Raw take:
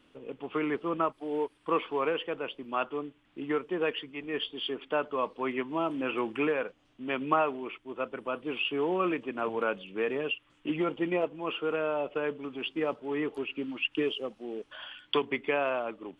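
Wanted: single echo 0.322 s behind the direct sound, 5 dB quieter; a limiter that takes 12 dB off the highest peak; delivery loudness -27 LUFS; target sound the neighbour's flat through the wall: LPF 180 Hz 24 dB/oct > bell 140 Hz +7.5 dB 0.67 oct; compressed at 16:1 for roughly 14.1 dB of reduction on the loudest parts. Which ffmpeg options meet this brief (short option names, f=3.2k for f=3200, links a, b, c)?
-af "acompressor=threshold=-36dB:ratio=16,alimiter=level_in=8dB:limit=-24dB:level=0:latency=1,volume=-8dB,lowpass=f=180:w=0.5412,lowpass=f=180:w=1.3066,equalizer=f=140:t=o:w=0.67:g=7.5,aecho=1:1:322:0.562,volume=28.5dB"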